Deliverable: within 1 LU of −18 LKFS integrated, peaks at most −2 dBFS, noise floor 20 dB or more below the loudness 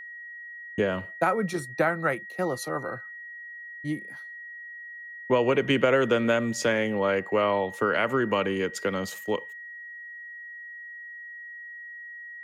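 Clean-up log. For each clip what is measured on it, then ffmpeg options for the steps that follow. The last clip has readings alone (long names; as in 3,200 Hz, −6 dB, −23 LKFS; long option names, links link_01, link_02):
interfering tone 1,900 Hz; level of the tone −39 dBFS; integrated loudness −26.5 LKFS; sample peak −9.5 dBFS; target loudness −18.0 LKFS
→ -af "bandreject=frequency=1900:width=30"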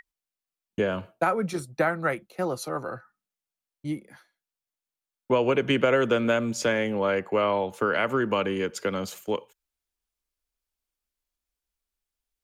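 interfering tone none found; integrated loudness −26.5 LKFS; sample peak −9.5 dBFS; target loudness −18.0 LKFS
→ -af "volume=8.5dB,alimiter=limit=-2dB:level=0:latency=1"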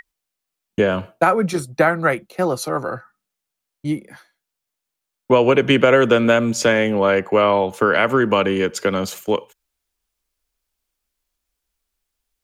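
integrated loudness −18.0 LKFS; sample peak −2.0 dBFS; background noise floor −82 dBFS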